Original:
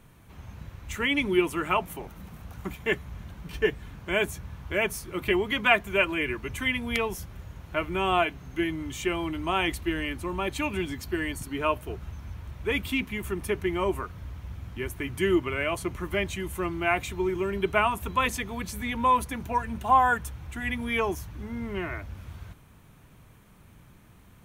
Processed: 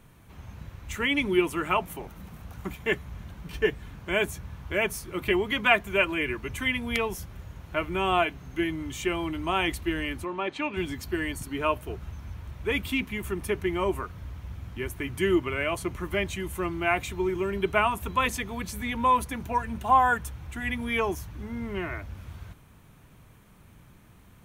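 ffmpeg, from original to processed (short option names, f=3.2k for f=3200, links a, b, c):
-filter_complex "[0:a]asplit=3[a][b][c];[a]afade=t=out:st=10.24:d=0.02[d];[b]highpass=240,lowpass=3.6k,afade=t=in:st=10.24:d=0.02,afade=t=out:st=10.76:d=0.02[e];[c]afade=t=in:st=10.76:d=0.02[f];[d][e][f]amix=inputs=3:normalize=0"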